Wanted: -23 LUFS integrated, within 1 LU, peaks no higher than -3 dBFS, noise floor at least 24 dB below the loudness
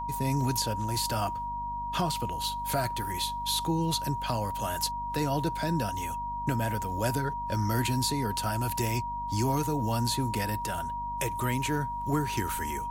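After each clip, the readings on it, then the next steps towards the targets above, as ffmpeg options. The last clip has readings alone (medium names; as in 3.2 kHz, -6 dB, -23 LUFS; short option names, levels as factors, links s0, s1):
hum 50 Hz; highest harmonic 250 Hz; hum level -40 dBFS; steady tone 950 Hz; tone level -32 dBFS; loudness -30.0 LUFS; peak level -16.0 dBFS; loudness target -23.0 LUFS
-> -af "bandreject=f=50:t=h:w=4,bandreject=f=100:t=h:w=4,bandreject=f=150:t=h:w=4,bandreject=f=200:t=h:w=4,bandreject=f=250:t=h:w=4"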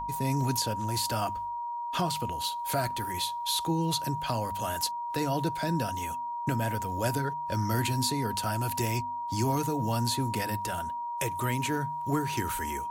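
hum not found; steady tone 950 Hz; tone level -32 dBFS
-> -af "bandreject=f=950:w=30"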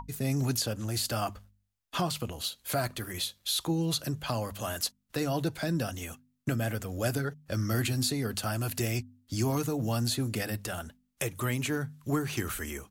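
steady tone not found; loudness -32.0 LUFS; peak level -17.0 dBFS; loudness target -23.0 LUFS
-> -af "volume=2.82"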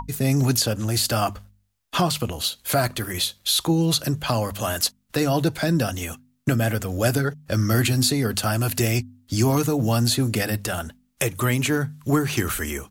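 loudness -23.0 LUFS; peak level -8.0 dBFS; noise floor -67 dBFS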